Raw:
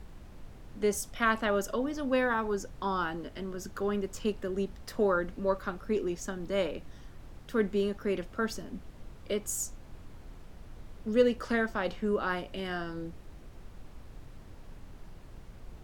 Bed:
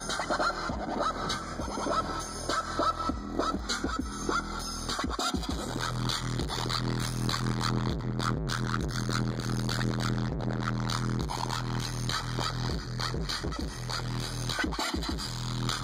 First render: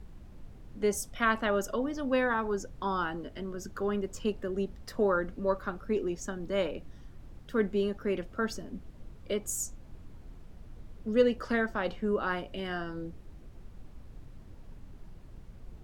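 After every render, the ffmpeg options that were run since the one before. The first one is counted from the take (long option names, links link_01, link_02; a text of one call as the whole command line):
ffmpeg -i in.wav -af "afftdn=noise_reduction=6:noise_floor=-50" out.wav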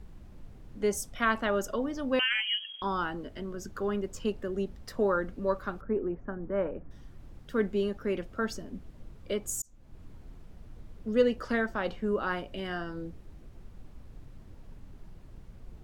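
ffmpeg -i in.wav -filter_complex "[0:a]asettb=1/sr,asplit=3[link_01][link_02][link_03];[link_01]atrim=end=2.194[link_04];[link_02]atrim=start=2.19:end=2.82,asetpts=PTS-STARTPTS,afade=type=in:duration=0.004:curve=qsin,afade=type=out:start_time=0.626:duration=0.004:curve=qsin,lowpass=frequency=2800:width_type=q:width=0.5098,lowpass=frequency=2800:width_type=q:width=0.6013,lowpass=frequency=2800:width_type=q:width=0.9,lowpass=frequency=2800:width_type=q:width=2.563,afreqshift=-3300[link_05];[link_03]atrim=start=2.816[link_06];[link_04][link_05]acrossfade=duration=0.004:curve1=hsin:curve2=qsin[link_07];[link_07][link_06]acrossfade=duration=0.004:curve1=qsin:curve2=hsin,asettb=1/sr,asplit=3[link_08][link_09][link_10];[link_08]atrim=end=5.814[link_11];[link_09]atrim=start=5.81:end=6.91,asetpts=PTS-STARTPTS,afade=type=in:duration=0.004:curve=qsin,afade=type=out:start_time=1.096:duration=0.004:curve=qsin,lowpass=frequency=1700:width=0.5412,lowpass=frequency=1700:width=1.3066[link_12];[link_10]atrim=start=6.906[link_13];[link_11][link_12]acrossfade=duration=0.004:curve1=hsin:curve2=qsin[link_14];[link_14][link_13]acrossfade=duration=0.004:curve1=qsin:curve2=hsin,asplit=2[link_15][link_16];[link_15]atrim=end=9.62,asetpts=PTS-STARTPTS,afade=type=out:start_time=9.616:duration=0.004:curve=hsin[link_17];[link_16]atrim=start=9.62,asetpts=PTS-STARTPTS,afade=type=in:duration=0.42[link_18];[link_17][link_18]concat=n=2:v=0:a=1" out.wav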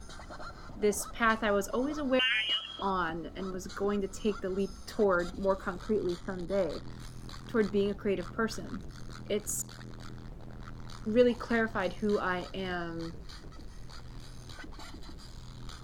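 ffmpeg -i in.wav -i bed.wav -filter_complex "[1:a]volume=-17dB[link_01];[0:a][link_01]amix=inputs=2:normalize=0" out.wav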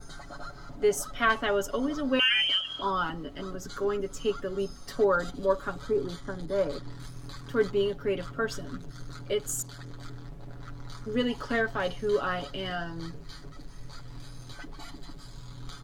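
ffmpeg -i in.wav -af "adynamicequalizer=threshold=0.00126:dfrequency=3100:dqfactor=7.3:tfrequency=3100:tqfactor=7.3:attack=5:release=100:ratio=0.375:range=3.5:mode=boostabove:tftype=bell,aecho=1:1:7.1:0.73" out.wav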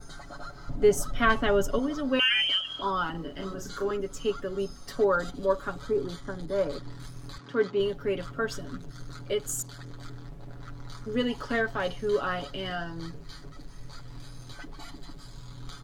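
ffmpeg -i in.wav -filter_complex "[0:a]asettb=1/sr,asplit=3[link_01][link_02][link_03];[link_01]atrim=end=0.684[link_04];[link_02]atrim=start=0.68:end=1.79,asetpts=PTS-STARTPTS,afade=type=in:duration=0.004:curve=qsin,afade=type=out:start_time=1.106:duration=0.004:curve=qsin,lowshelf=frequency=280:gain=11.5[link_05];[link_03]atrim=start=1.786[link_06];[link_04][link_05]acrossfade=duration=0.004:curve1=hsin:curve2=qsin[link_07];[link_07][link_06]acrossfade=duration=0.004:curve1=qsin:curve2=hsin,asettb=1/sr,asplit=3[link_08][link_09][link_10];[link_08]atrim=end=3.114[link_11];[link_09]atrim=start=3.11:end=3.91,asetpts=PTS-STARTPTS,afade=type=in:duration=0.004:curve=qsin,afade=type=out:start_time=0.796:duration=0.004:curve=qsin,asplit=2[link_12][link_13];[link_13]adelay=36,volume=-4.5dB[link_14];[link_12][link_14]amix=inputs=2:normalize=0,atrim=end_sample=35280[link_15];[link_10]atrim=start=3.906[link_16];[link_11][link_15]acrossfade=duration=0.004:curve1=hsin:curve2=qsin[link_17];[link_17][link_16]acrossfade=duration=0.004:curve1=qsin:curve2=hsin,asettb=1/sr,asplit=3[link_18][link_19][link_20];[link_18]atrim=end=7.384[link_21];[link_19]atrim=start=7.38:end=7.8,asetpts=PTS-STARTPTS,afade=type=in:duration=0.004:curve=qsin,afade=type=out:start_time=0.416:duration=0.004:curve=qsin,highpass=170,lowpass=5100[link_22];[link_20]atrim=start=7.796[link_23];[link_21][link_22]acrossfade=duration=0.004:curve1=hsin:curve2=qsin[link_24];[link_24][link_23]acrossfade=duration=0.004:curve1=qsin:curve2=hsin" out.wav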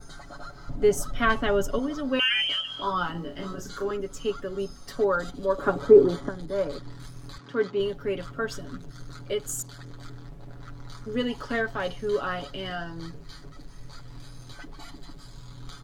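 ffmpeg -i in.wav -filter_complex "[0:a]asettb=1/sr,asplit=3[link_01][link_02][link_03];[link_01]atrim=end=2.494[link_04];[link_02]atrim=start=2.49:end=3.6,asetpts=PTS-STARTPTS,afade=type=in:duration=0.004:curve=qsin,afade=type=out:start_time=1.106:duration=0.004:curve=qsin,asplit=2[link_05][link_06];[link_06]adelay=17,volume=-4dB[link_07];[link_05][link_07]amix=inputs=2:normalize=0,atrim=end_sample=48951[link_08];[link_03]atrim=start=3.596[link_09];[link_04][link_08]acrossfade=duration=0.004:curve1=hsin:curve2=qsin[link_10];[link_10][link_09]acrossfade=duration=0.004:curve1=qsin:curve2=hsin,asettb=1/sr,asplit=3[link_11][link_12][link_13];[link_11]atrim=end=5.584[link_14];[link_12]atrim=start=5.58:end=6.29,asetpts=PTS-STARTPTS,afade=type=in:duration=0.004:curve=qsin,afade=type=out:start_time=0.706:duration=0.004:curve=qsin,equalizer=frequency=450:width_type=o:width=3:gain=14[link_15];[link_13]atrim=start=6.286[link_16];[link_14][link_15]acrossfade=duration=0.004:curve1=hsin:curve2=qsin[link_17];[link_17][link_16]acrossfade=duration=0.004:curve1=qsin:curve2=hsin" out.wav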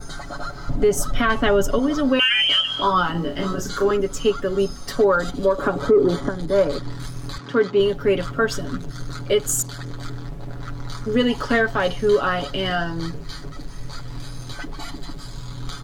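ffmpeg -i in.wav -filter_complex "[0:a]asplit=2[link_01][link_02];[link_02]acontrast=65,volume=1dB[link_03];[link_01][link_03]amix=inputs=2:normalize=0,alimiter=limit=-9dB:level=0:latency=1:release=203" out.wav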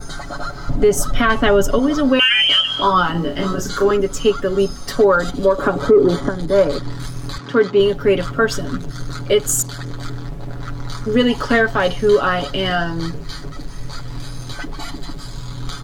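ffmpeg -i in.wav -af "volume=4dB" out.wav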